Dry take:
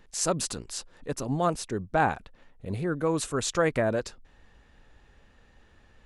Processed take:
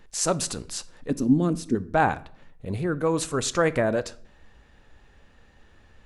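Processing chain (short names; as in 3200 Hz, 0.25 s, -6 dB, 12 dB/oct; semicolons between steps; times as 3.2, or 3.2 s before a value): 1.1–1.75 EQ curve 140 Hz 0 dB, 250 Hz +13 dB, 690 Hz -13 dB, 5000 Hz -5 dB; on a send: reverb RT60 0.55 s, pre-delay 3 ms, DRR 15 dB; on the sum: gain +2.5 dB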